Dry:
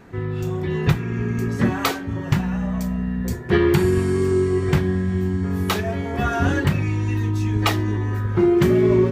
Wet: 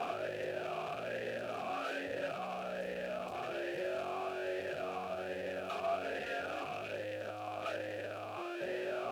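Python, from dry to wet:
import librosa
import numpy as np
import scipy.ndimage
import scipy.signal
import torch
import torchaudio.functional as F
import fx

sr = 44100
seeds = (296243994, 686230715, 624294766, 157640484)

y = np.sign(x) * np.sqrt(np.mean(np.square(x)))
y = fx.dmg_noise_colour(y, sr, seeds[0], colour='violet', level_db=-32.0)
y = fx.vowel_sweep(y, sr, vowels='a-e', hz=1.2)
y = y * 10.0 ** (-4.5 / 20.0)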